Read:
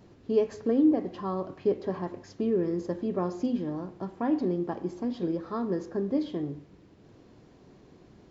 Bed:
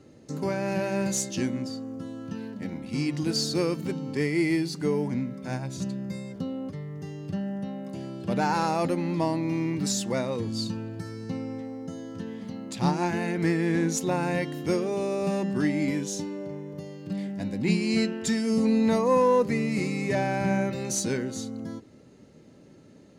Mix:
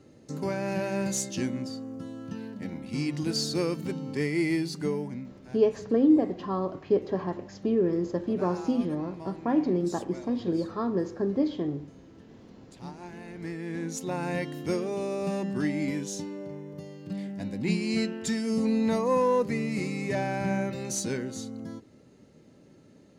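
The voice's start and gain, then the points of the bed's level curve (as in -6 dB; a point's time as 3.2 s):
5.25 s, +2.0 dB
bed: 4.83 s -2 dB
5.61 s -17 dB
13.03 s -17 dB
14.35 s -3 dB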